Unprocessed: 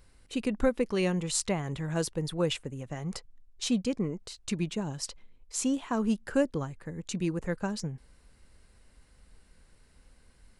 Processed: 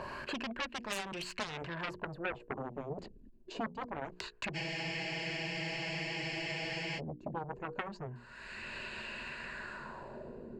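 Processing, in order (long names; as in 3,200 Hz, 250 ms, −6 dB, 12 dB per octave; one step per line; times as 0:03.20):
source passing by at 0:02.51, 23 m/s, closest 8.9 metres
reversed playback
downward compressor 12 to 1, threshold −51 dBFS, peak gain reduction 27 dB
reversed playback
EQ curve with evenly spaced ripples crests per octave 1.4, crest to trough 10 dB
auto-filter low-pass sine 0.25 Hz 270–2,800 Hz
mains-hum notches 60/120/180/240/300/360/420/480 Hz
harmonic generator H 7 −7 dB, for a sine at −38.5 dBFS
spectral tilt +2 dB per octave
frozen spectrum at 0:04.57, 2.40 s
multiband upward and downward compressor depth 100%
level +14 dB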